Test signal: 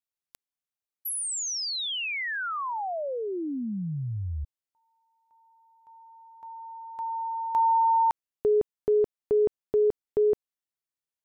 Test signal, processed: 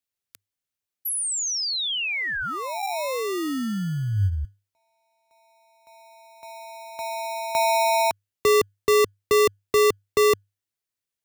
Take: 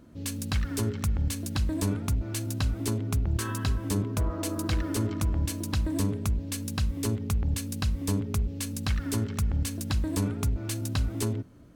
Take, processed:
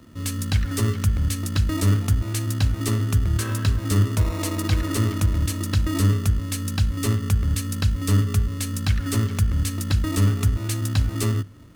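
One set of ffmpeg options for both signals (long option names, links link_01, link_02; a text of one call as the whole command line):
ffmpeg -i in.wav -filter_complex "[0:a]equalizer=frequency=100:width=7.7:gain=9,acrossover=split=140|1000[link_01][link_02][link_03];[link_02]acrusher=samples=28:mix=1:aa=0.000001[link_04];[link_01][link_04][link_03]amix=inputs=3:normalize=0,volume=4.5dB" out.wav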